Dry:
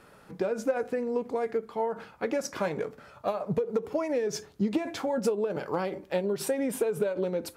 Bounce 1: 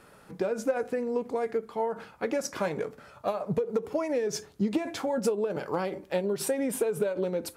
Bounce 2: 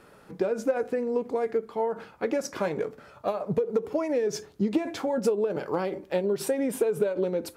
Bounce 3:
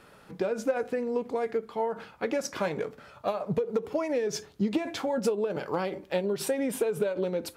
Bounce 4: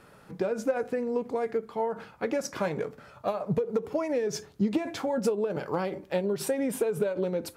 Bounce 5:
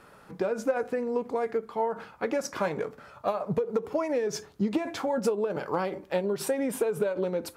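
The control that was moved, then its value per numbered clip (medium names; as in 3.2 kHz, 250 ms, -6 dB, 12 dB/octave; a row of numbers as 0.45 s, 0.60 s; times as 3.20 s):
peaking EQ, frequency: 9.7 kHz, 370 Hz, 3.3 kHz, 130 Hz, 1.1 kHz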